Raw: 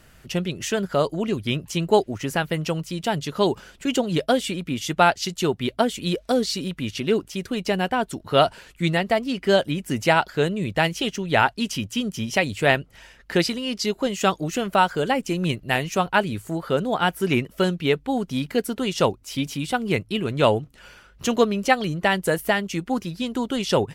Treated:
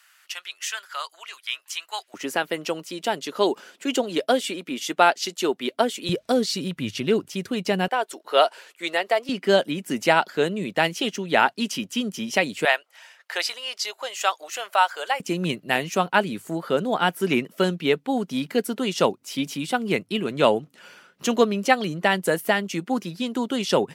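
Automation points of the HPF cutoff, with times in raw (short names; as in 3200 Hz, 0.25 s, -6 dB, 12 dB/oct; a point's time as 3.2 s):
HPF 24 dB/oct
1100 Hz
from 2.14 s 260 Hz
from 6.09 s 110 Hz
from 7.88 s 400 Hz
from 9.29 s 190 Hz
from 12.65 s 650 Hz
from 15.2 s 170 Hz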